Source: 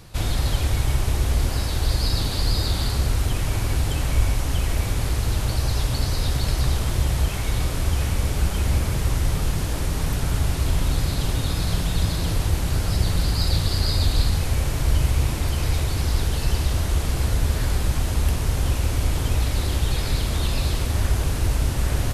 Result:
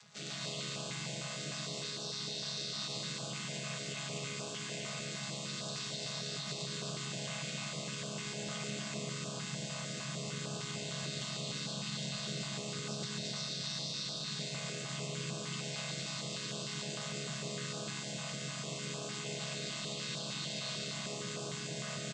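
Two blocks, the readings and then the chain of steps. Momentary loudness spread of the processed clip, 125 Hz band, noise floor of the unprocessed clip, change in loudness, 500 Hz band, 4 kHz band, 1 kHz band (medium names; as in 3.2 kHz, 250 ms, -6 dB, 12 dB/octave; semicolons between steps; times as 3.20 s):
2 LU, -21.5 dB, -26 dBFS, -15.0 dB, -10.5 dB, -7.5 dB, -14.5 dB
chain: vocoder on a held chord minor triad, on C#3; tilt EQ +4.5 dB/octave; band-stop 870 Hz, Q 12; upward compressor, threshold -53 dBFS; peak limiter -26.5 dBFS, peak gain reduction 10 dB; loudspeakers at several distances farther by 38 m -10 dB, 49 m -5 dB, 86 m -3 dB; step-sequenced notch 6.6 Hz 350–2000 Hz; trim -5 dB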